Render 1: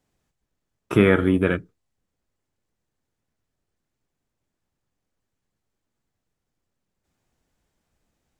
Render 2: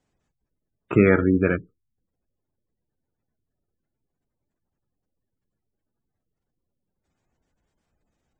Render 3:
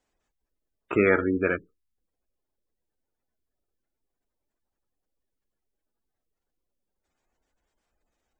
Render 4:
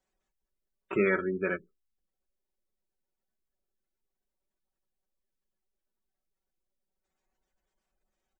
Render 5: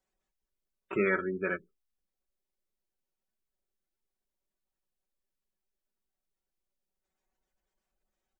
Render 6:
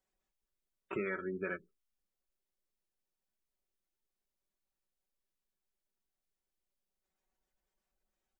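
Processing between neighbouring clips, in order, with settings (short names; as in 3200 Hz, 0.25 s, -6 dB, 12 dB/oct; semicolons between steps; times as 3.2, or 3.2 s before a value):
spectral gate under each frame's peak -25 dB strong
bell 130 Hz -14.5 dB 1.8 oct
comb 5.3 ms, depth 69%; gain -7 dB
dynamic EQ 1400 Hz, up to +3 dB, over -39 dBFS, Q 1.2; gain -2.5 dB
compressor, threshold -31 dBFS, peak gain reduction 8 dB; gain -2.5 dB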